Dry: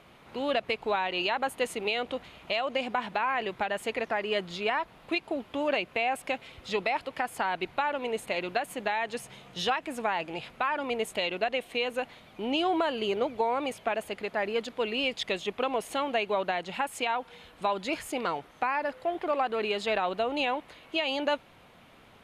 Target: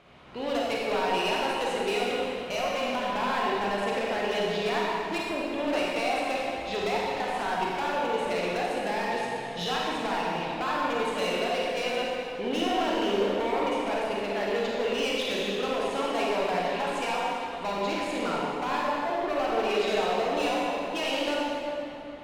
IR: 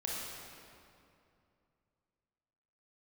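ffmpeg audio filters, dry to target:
-filter_complex "[0:a]lowpass=6600,asoftclip=type=hard:threshold=-27.5dB[link_01];[1:a]atrim=start_sample=2205,asetrate=36162,aresample=44100[link_02];[link_01][link_02]afir=irnorm=-1:irlink=0"

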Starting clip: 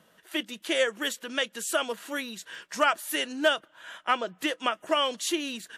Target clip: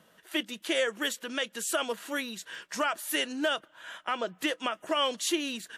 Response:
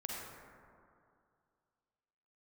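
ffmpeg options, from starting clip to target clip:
-af "alimiter=limit=-17.5dB:level=0:latency=1:release=73"

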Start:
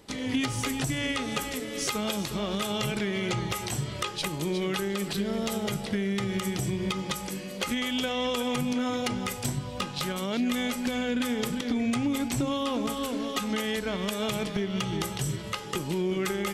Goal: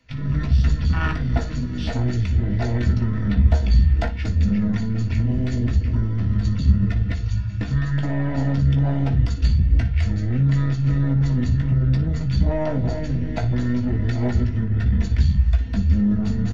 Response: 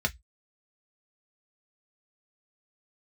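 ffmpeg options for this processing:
-filter_complex "[0:a]afwtdn=0.0355,tiltshelf=frequency=970:gain=-4,aeval=exprs='(tanh(22.4*val(0)+0.7)-tanh(0.7))/22.4':channel_layout=same,acrossover=split=100|1800[link_01][link_02][link_03];[link_01]aeval=exprs='0.0188*sin(PI/2*5.01*val(0)/0.0188)':channel_layout=same[link_04];[link_04][link_02][link_03]amix=inputs=3:normalize=0,asetrate=24750,aresample=44100,atempo=1.7818,aecho=1:1:16|58:0.398|0.211[link_05];[1:a]atrim=start_sample=2205[link_06];[link_05][link_06]afir=irnorm=-1:irlink=0,volume=4.5dB"

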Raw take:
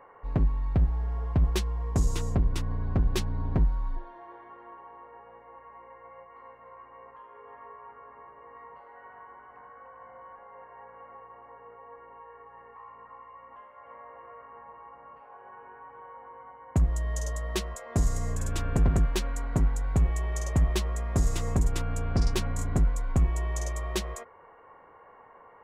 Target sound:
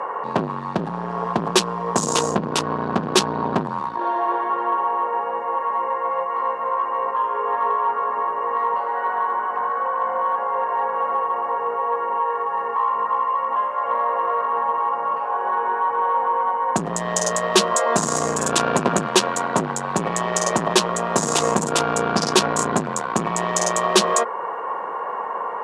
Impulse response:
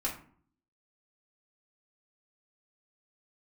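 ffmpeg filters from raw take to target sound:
-af "apsyclip=25.5dB,acontrast=61,highpass=frequency=210:width=0.5412,highpass=frequency=210:width=1.3066,equalizer=frequency=280:width_type=q:width=4:gain=-9,equalizer=frequency=1000:width_type=q:width=4:gain=5,equalizer=frequency=2100:width_type=q:width=4:gain=-8,lowpass=frequency=9800:width=0.5412,lowpass=frequency=9800:width=1.3066,volume=-7.5dB"

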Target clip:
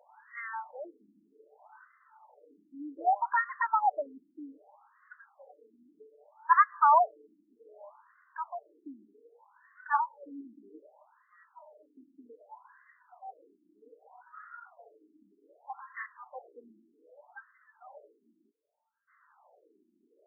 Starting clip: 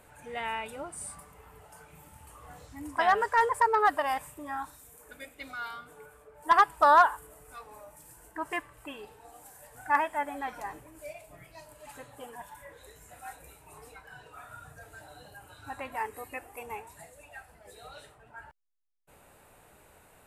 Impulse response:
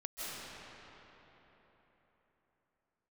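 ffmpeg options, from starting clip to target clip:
-filter_complex "[0:a]asettb=1/sr,asplit=3[link_01][link_02][link_03];[link_01]atrim=end=9.024[link_04];[link_02]atrim=start=9.02:end=10.45,asetpts=PTS-STARTPTS,afade=type=in:duration=0.004:curve=qsin,afade=type=out:start_time=1.426:duration=0.004:curve=qsin,asuperstop=centerf=680:order=12:qfactor=2.4[link_05];[link_03]atrim=start=10.446[link_06];[link_04][link_05]acrossfade=duration=0.004:curve1=hsin:curve2=qsin[link_07];[link_07][link_06]acrossfade=duration=0.004:curve1=qsin:curve2=hsin,asplit=2[link_08][link_09];[1:a]atrim=start_sample=2205,asetrate=66150,aresample=44100[link_10];[link_09][link_10]afir=irnorm=-1:irlink=0,volume=-23.5dB[link_11];[link_08][link_11]amix=inputs=2:normalize=0,afftfilt=real='re*between(b*sr/1024,260*pow(1500/260,0.5+0.5*sin(2*PI*0.64*pts/sr))/1.41,260*pow(1500/260,0.5+0.5*sin(2*PI*0.64*pts/sr))*1.41)':imag='im*between(b*sr/1024,260*pow(1500/260,0.5+0.5*sin(2*PI*0.64*pts/sr))/1.41,260*pow(1500/260,0.5+0.5*sin(2*PI*0.64*pts/sr))*1.41)':win_size=1024:overlap=0.75"

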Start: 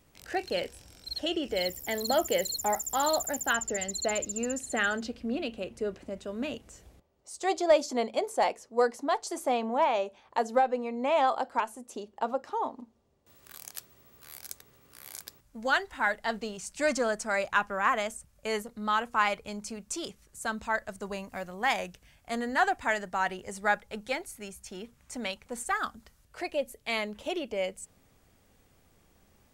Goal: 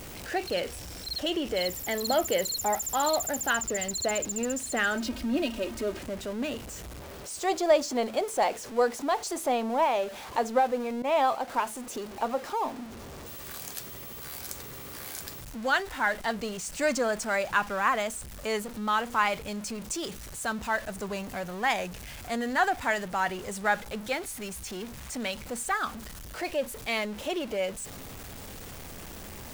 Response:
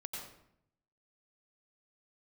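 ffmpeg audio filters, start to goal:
-filter_complex "[0:a]aeval=exprs='val(0)+0.5*0.0141*sgn(val(0))':channel_layout=same,asettb=1/sr,asplit=3[link_01][link_02][link_03];[link_01]atrim=end=4.954[link_04];[link_02]atrim=start=4.95:end=5.99,asetpts=PTS-STARTPTS,afade=type=in:duration=0.004:curve=qsin,afade=type=out:start_time=1.036:duration=0.004:curve=qsin,aecho=1:1:3.2:0.78,atrim=end_sample=45864[link_05];[link_03]atrim=start=5.986[link_06];[link_04][link_05]acrossfade=duration=0.004:curve1=hsin:curve2=qsin[link_07];[link_07][link_06]acrossfade=duration=0.004:curve1=qsin:curve2=hsin,asettb=1/sr,asplit=3[link_08][link_09][link_10];[link_08]atrim=end=11.024[link_11];[link_09]atrim=start=11.02:end=11.48,asetpts=PTS-STARTPTS,afade=type=in:duration=0.004:curve=qsin,afade=type=out:start_time=0.456:duration=0.004:curve=qsin,agate=range=-33dB:threshold=-25dB:ratio=3:detection=peak[link_12];[link_10]atrim=start=11.476[link_13];[link_11][link_12]acrossfade=duration=0.004:curve1=hsin:curve2=qsin[link_14];[link_14][link_13]acrossfade=duration=0.004:curve1=qsin:curve2=hsin"

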